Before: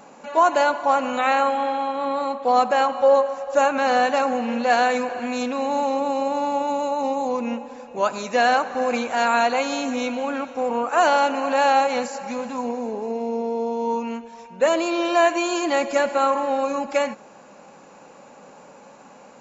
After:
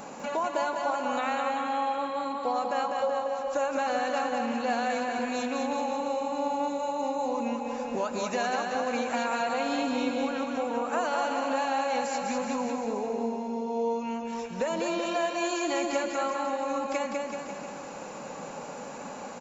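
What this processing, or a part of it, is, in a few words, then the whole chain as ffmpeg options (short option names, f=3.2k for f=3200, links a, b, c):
ASMR close-microphone chain: -filter_complex "[0:a]lowshelf=f=120:g=4.5,acompressor=threshold=-35dB:ratio=4,highshelf=f=6.6k:g=5,asettb=1/sr,asplit=3[a][b][c];[a]atrim=end=9.404[d];[b]atrim=start=9.4:end=10.18,asetpts=PTS-STARTPTS,afade=t=in:d=0.004:c=qsin,afade=t=out:st=0.776:d=0.004:c=qsin,equalizer=f=160:t=o:w=0.33:g=11,equalizer=f=315:t=o:w=0.33:g=7,equalizer=f=2k:t=o:w=0.33:g=-4,equalizer=f=6.3k:t=o:w=0.33:g=-11[e];[c]atrim=start=10.176[f];[d][e]acrossfade=d=0.004:c1=hsin:c2=qsin[g];[g][f]acrossfade=d=0.004:c1=qsin:c2=hsin,aecho=1:1:200|380|542|687.8|819:0.631|0.398|0.251|0.158|0.1,volume=4dB"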